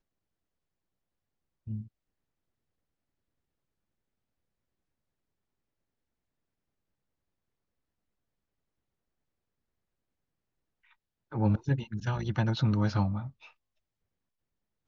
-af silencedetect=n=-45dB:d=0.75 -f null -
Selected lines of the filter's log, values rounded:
silence_start: 0.00
silence_end: 1.67 | silence_duration: 1.67
silence_start: 1.87
silence_end: 11.32 | silence_duration: 9.45
silence_start: 13.46
silence_end: 14.87 | silence_duration: 1.41